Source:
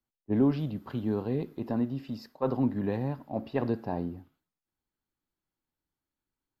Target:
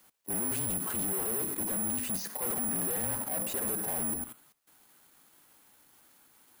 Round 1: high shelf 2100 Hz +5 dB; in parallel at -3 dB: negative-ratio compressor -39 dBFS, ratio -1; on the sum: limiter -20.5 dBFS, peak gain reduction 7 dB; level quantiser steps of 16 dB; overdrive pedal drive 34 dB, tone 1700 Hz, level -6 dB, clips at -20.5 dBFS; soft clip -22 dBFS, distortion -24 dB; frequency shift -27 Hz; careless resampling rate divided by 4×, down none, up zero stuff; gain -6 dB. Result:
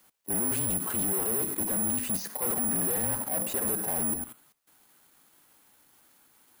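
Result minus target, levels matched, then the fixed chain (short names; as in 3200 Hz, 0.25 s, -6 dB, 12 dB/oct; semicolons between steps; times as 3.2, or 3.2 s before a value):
soft clip: distortion -11 dB
high shelf 2100 Hz +5 dB; in parallel at -3 dB: negative-ratio compressor -39 dBFS, ratio -1; on the sum: limiter -20.5 dBFS, peak gain reduction 7 dB; level quantiser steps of 16 dB; overdrive pedal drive 34 dB, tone 1700 Hz, level -6 dB, clips at -20.5 dBFS; soft clip -30 dBFS, distortion -13 dB; frequency shift -27 Hz; careless resampling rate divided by 4×, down none, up zero stuff; gain -6 dB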